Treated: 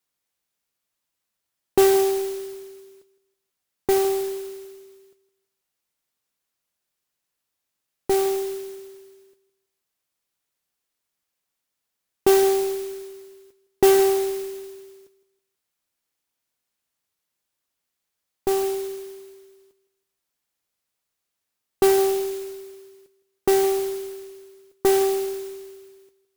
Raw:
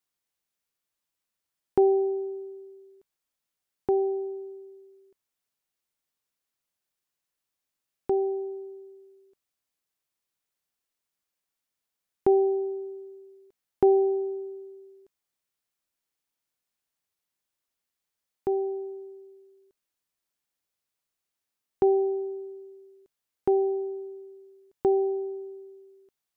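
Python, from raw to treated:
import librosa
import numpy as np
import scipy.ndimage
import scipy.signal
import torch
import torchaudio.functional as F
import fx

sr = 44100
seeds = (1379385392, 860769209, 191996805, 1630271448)

y = fx.cheby_harmonics(x, sr, harmonics=(8,), levels_db=(-22,), full_scale_db=-11.5)
y = fx.mod_noise(y, sr, seeds[0], snr_db=12)
y = fx.echo_feedback(y, sr, ms=162, feedback_pct=33, wet_db=-16.5)
y = y * librosa.db_to_amplitude(4.0)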